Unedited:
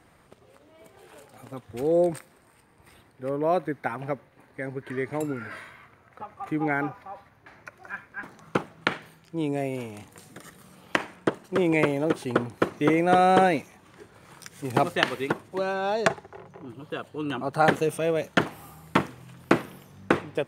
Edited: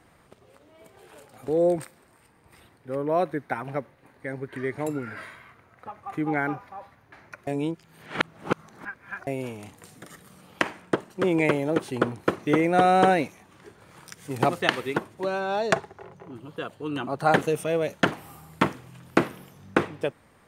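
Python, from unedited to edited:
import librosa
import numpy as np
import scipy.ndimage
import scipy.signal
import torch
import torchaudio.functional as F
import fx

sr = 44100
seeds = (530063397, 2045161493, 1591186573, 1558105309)

y = fx.edit(x, sr, fx.cut(start_s=1.48, length_s=0.34),
    fx.reverse_span(start_s=7.81, length_s=1.8), tone=tone)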